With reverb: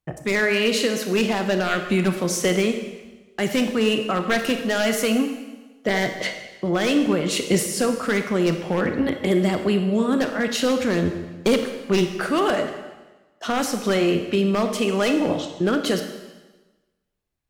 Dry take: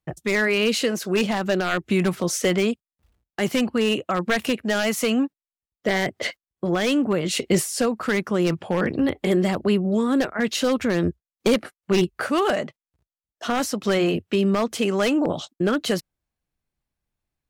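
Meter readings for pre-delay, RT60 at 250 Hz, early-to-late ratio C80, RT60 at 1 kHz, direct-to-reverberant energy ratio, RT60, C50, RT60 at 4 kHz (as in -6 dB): 27 ms, 1.2 s, 9.0 dB, 1.2 s, 6.0 dB, 1.2 s, 7.5 dB, 1.1 s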